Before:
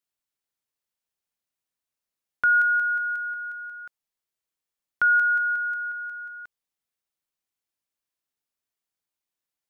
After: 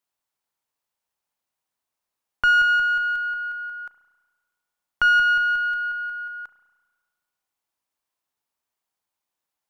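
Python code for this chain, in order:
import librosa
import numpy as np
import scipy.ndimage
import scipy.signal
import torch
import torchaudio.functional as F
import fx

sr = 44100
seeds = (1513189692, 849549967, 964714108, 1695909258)

y = fx.diode_clip(x, sr, knee_db=-24.0)
y = fx.peak_eq(y, sr, hz=900.0, db=8.0, octaves=1.0)
y = fx.rev_spring(y, sr, rt60_s=1.4, pass_ms=(33,), chirp_ms=30, drr_db=11.5)
y = F.gain(torch.from_numpy(y), 2.0).numpy()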